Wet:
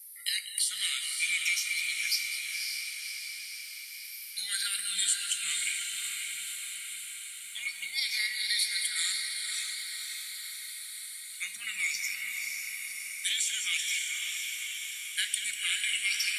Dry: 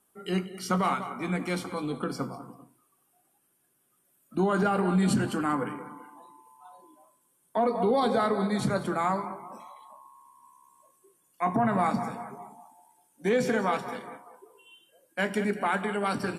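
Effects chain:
rippled gain that drifts along the octave scale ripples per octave 0.76, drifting −0.48 Hz, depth 14 dB
elliptic high-pass filter 2,100 Hz, stop band 50 dB
high-shelf EQ 2,900 Hz +12 dB
downward compressor, threshold −35 dBFS, peak gain reduction 16.5 dB
on a send: feedback delay with all-pass diffusion 552 ms, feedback 64%, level −4 dB
on the sum: level +8 dB

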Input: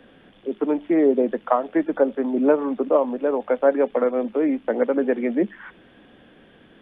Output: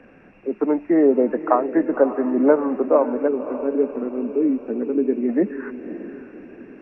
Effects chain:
hearing-aid frequency compression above 1,700 Hz 1.5 to 1
gain on a spectral selection 0:03.28–0:05.29, 470–2,200 Hz −17 dB
feedback delay with all-pass diffusion 561 ms, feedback 44%, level −12 dB
level +2 dB

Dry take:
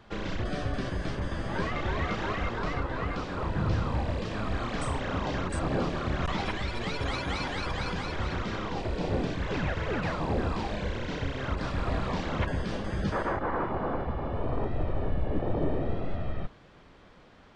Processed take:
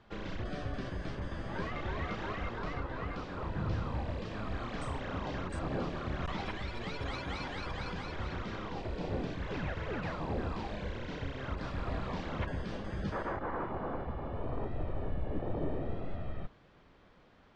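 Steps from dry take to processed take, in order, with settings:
high-frequency loss of the air 52 metres
level −6.5 dB

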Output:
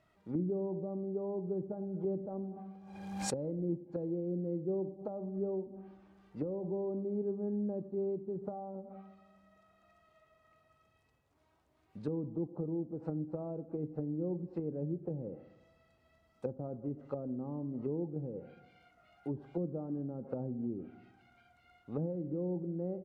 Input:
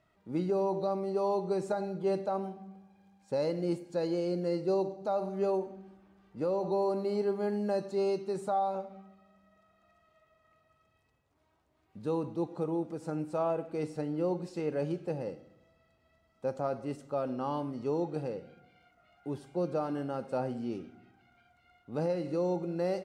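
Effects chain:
treble cut that deepens with the level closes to 310 Hz, closed at −31.5 dBFS
0:02.21–0:03.65: background raised ahead of every attack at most 41 dB per second

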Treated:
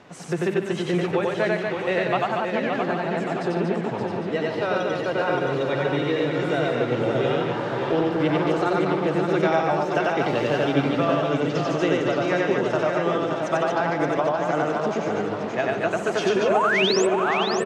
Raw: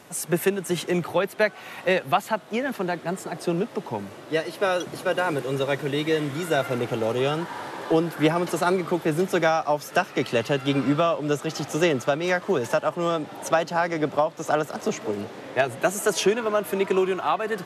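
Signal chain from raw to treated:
in parallel at +1 dB: downward compressor, threshold −29 dBFS, peak gain reduction 13.5 dB
0:10.21–0:10.65: on the sum: bit-depth reduction 6 bits, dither triangular
on a send: loudspeakers that aren't time-aligned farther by 32 metres −1 dB, 52 metres −11 dB, 81 metres −4 dB
0:16.42–0:17.07: on the sum: sound drawn into the spectrogram rise 400–8,700 Hz −15 dBFS
high-frequency loss of the air 150 metres
feedback echo with a swinging delay time 572 ms, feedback 51%, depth 50 cents, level −6 dB
level −5.5 dB

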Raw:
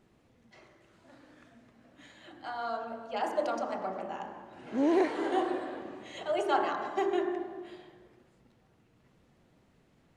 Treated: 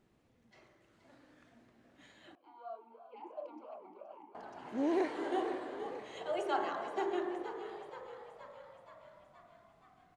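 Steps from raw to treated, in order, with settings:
echo with shifted repeats 474 ms, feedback 62%, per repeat +61 Hz, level −11 dB
0:02.35–0:04.35: formant filter swept between two vowels a-u 2.9 Hz
level −6 dB

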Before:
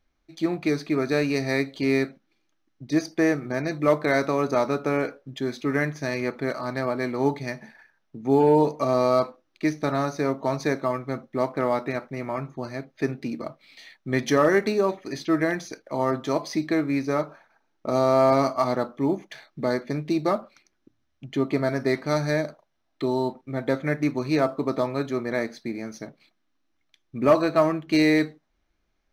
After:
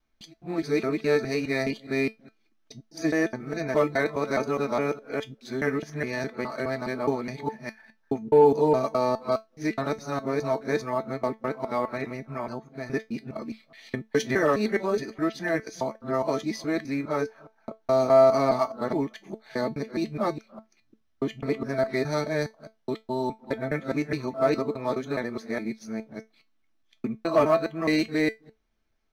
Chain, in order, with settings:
reversed piece by piece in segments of 208 ms
tuned comb filter 220 Hz, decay 0.18 s, harmonics all, mix 70%
level +4.5 dB

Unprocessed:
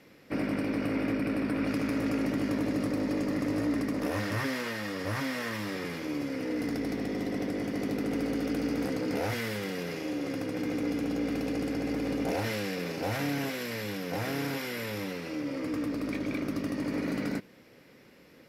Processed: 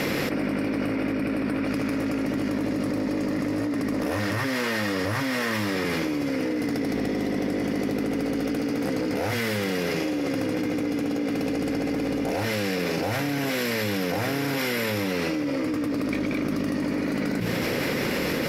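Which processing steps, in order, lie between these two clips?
hum removal 57.49 Hz, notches 3
envelope flattener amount 100%

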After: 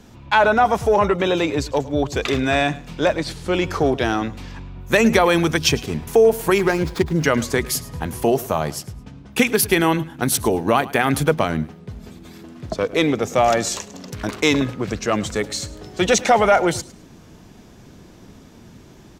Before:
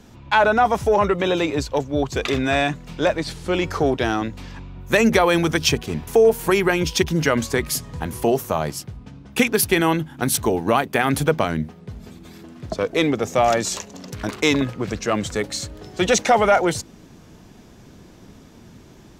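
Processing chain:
0:06.58–0:07.24: running median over 15 samples
repeating echo 106 ms, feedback 22%, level −19 dB
level +1 dB

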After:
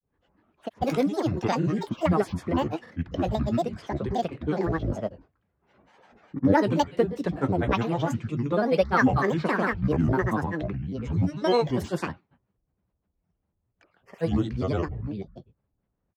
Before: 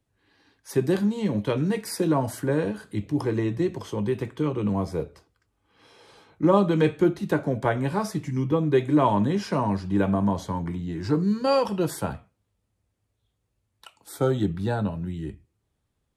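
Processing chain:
low-pass that shuts in the quiet parts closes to 1,200 Hz, open at −18.5 dBFS
granular cloud, pitch spread up and down by 12 semitones

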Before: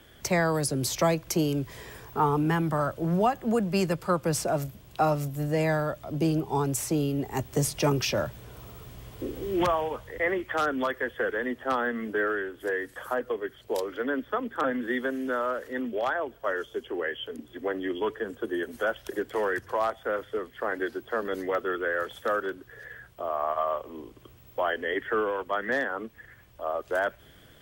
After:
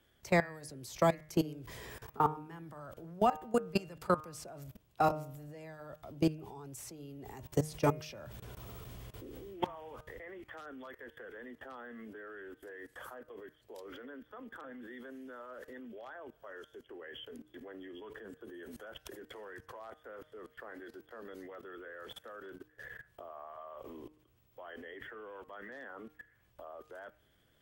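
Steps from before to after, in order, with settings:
output level in coarse steps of 23 dB
hum removal 153.9 Hz, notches 18
level −1.5 dB

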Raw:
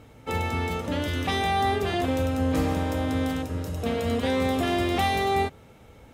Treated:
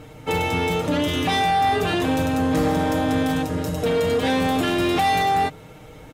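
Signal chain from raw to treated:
comb filter 6.5 ms, depth 66%
in parallel at +2 dB: brickwall limiter −19 dBFS, peak gain reduction 8 dB
on the sum: soft clipping −13.5 dBFS, distortion −18 dB

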